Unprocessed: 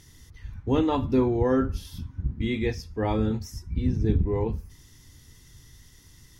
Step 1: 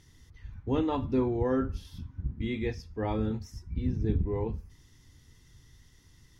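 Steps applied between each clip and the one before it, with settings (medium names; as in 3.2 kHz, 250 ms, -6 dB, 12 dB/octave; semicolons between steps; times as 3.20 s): treble shelf 7.6 kHz -11 dB; trim -5 dB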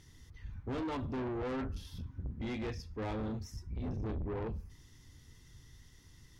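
saturation -34.5 dBFS, distortion -6 dB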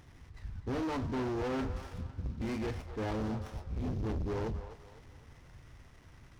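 CVSD coder 32 kbps; feedback echo behind a band-pass 253 ms, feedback 39%, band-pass 1 kHz, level -9 dB; sliding maximum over 9 samples; trim +3 dB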